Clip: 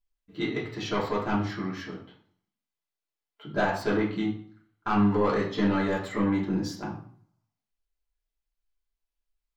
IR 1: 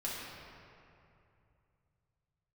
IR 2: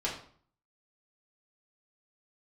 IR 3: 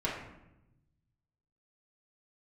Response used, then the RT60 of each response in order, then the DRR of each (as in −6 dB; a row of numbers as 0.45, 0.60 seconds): 2; 2.7, 0.50, 0.90 seconds; −7.0, −6.0, −7.0 decibels